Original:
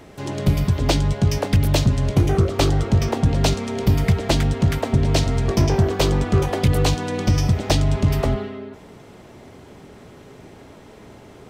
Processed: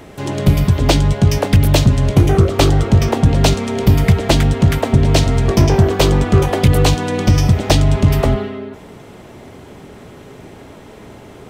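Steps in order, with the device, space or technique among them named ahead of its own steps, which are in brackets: exciter from parts (in parallel at -12.5 dB: high-pass 3.5 kHz 24 dB/octave + saturation -23 dBFS, distortion -13 dB + high-pass 3.3 kHz); on the sum: trim +6 dB

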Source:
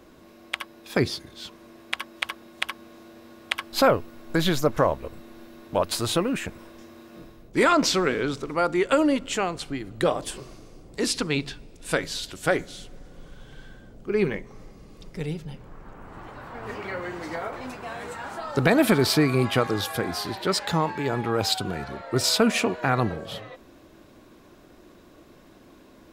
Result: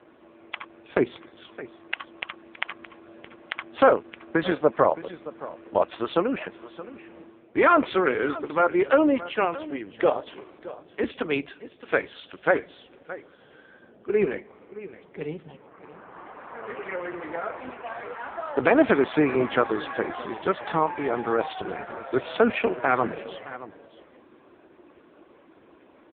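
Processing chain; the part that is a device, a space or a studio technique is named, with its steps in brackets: satellite phone (band-pass 310–3000 Hz; delay 619 ms -16 dB; trim +3.5 dB; AMR-NB 5.15 kbps 8 kHz)

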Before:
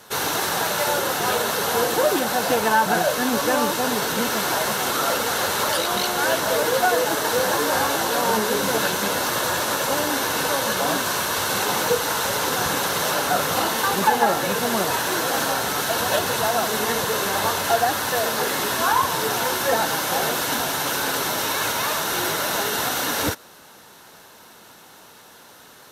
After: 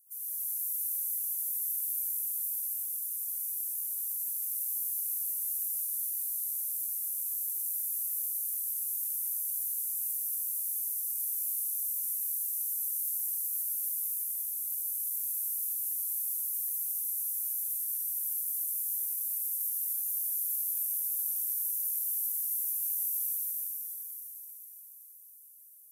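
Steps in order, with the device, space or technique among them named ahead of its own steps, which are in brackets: inverse Chebyshev high-pass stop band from 2.1 kHz, stop band 80 dB; shimmer-style reverb (harmony voices +12 st -9 dB; reverberation RT60 5.1 s, pre-delay 62 ms, DRR -7 dB); trim -7 dB

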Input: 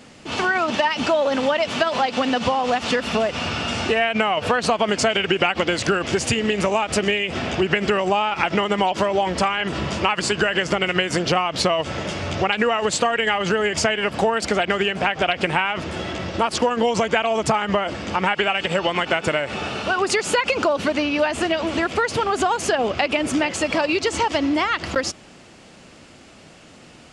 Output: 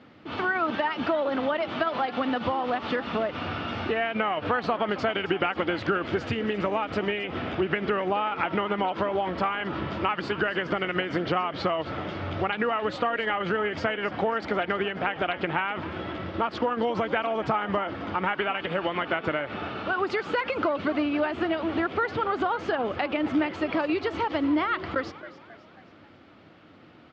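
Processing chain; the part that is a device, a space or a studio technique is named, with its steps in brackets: frequency-shifting delay pedal into a guitar cabinet (frequency-shifting echo 270 ms, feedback 50%, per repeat +79 Hz, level -15.5 dB; cabinet simulation 78–3600 Hz, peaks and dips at 94 Hz +6 dB, 310 Hz +6 dB, 1.3 kHz +5 dB, 2.7 kHz -5 dB); trim -7.5 dB

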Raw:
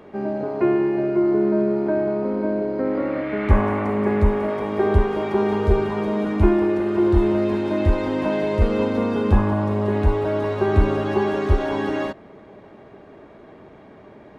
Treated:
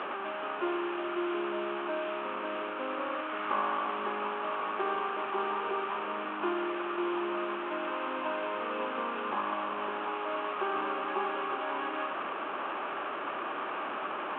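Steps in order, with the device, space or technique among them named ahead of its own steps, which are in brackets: digital answering machine (band-pass 320–3100 Hz; one-bit delta coder 16 kbps, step -21 dBFS; cabinet simulation 410–3100 Hz, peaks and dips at 440 Hz -9 dB, 650 Hz -6 dB, 1.2 kHz +7 dB, 2 kHz -10 dB); trim -5.5 dB

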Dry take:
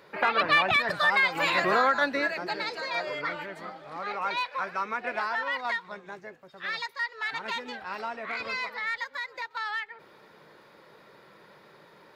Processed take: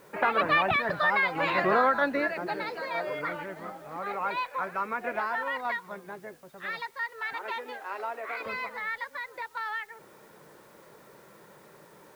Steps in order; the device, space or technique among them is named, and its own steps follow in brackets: 7.33–8.46 s: steep high-pass 300 Hz 36 dB/octave; cassette deck with a dirty head (tape spacing loss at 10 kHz 29 dB; wow and flutter 28 cents; white noise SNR 32 dB); trim +3 dB

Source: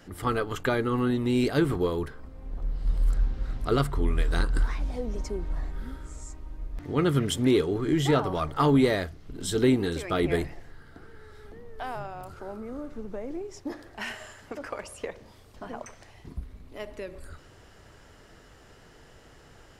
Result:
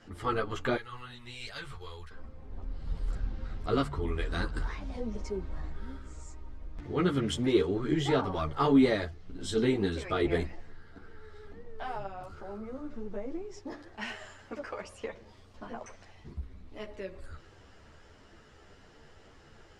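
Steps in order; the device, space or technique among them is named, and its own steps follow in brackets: 0.76–2.11 s: amplifier tone stack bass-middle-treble 10-0-10; string-machine ensemble chorus (three-phase chorus; low-pass 6.5 kHz 12 dB/octave)

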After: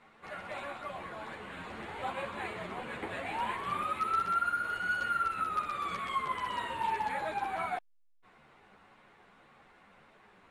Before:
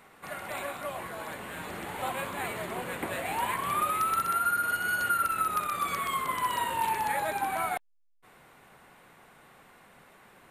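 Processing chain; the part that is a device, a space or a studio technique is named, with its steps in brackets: string-machine ensemble chorus (three-phase chorus; low-pass 4.8 kHz 12 dB/octave); trim -1 dB

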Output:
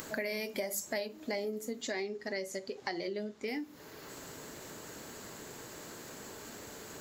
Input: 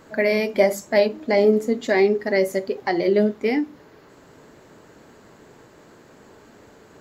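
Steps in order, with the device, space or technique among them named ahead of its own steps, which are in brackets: upward and downward compression (upward compressor, threshold -41 dBFS; compression 6:1, threshold -33 dBFS, peak gain reduction 19.5 dB); pre-emphasis filter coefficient 0.8; 1.82–3.48 s: Chebyshev low-pass 6.7 kHz, order 2; trim +11 dB

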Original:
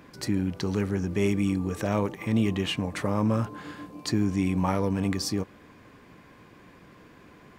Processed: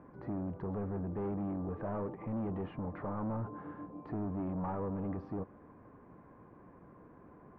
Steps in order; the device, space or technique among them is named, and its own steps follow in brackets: overdriven synthesiser ladder filter (saturation -29.5 dBFS, distortion -6 dB; four-pole ladder low-pass 1.4 kHz, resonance 20%); trim +1 dB

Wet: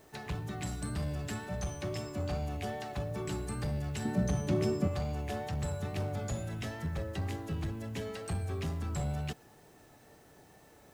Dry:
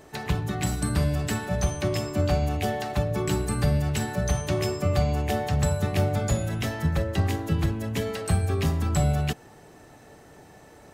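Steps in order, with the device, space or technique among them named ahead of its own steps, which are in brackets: compact cassette (saturation -19 dBFS, distortion -16 dB; low-pass 11 kHz 12 dB/octave; wow and flutter 25 cents; white noise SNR 32 dB); 4.05–4.88 s: peaking EQ 230 Hz +14 dB 1.6 oct; trim -9 dB

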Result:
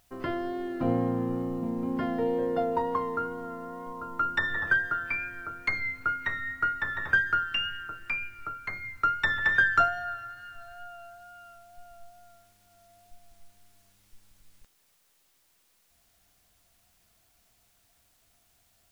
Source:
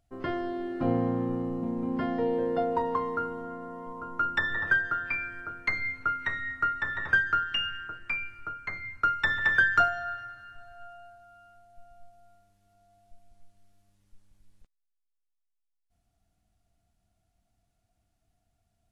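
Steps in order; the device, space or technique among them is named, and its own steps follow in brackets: noise-reduction cassette on a plain deck (tape noise reduction on one side only encoder only; wow and flutter 22 cents; white noise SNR 36 dB)

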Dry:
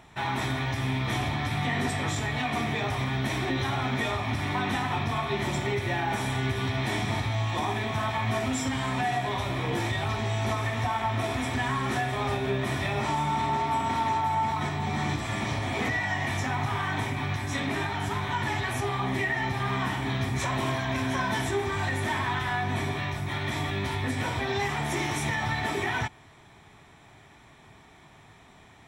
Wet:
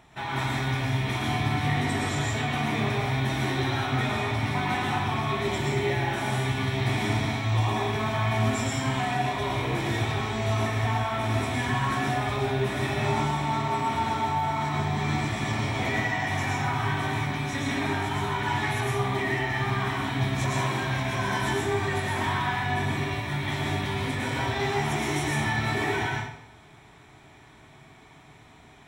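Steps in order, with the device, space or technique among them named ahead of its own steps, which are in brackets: bathroom (reverberation RT60 0.75 s, pre-delay 104 ms, DRR -2.5 dB); trim -3 dB

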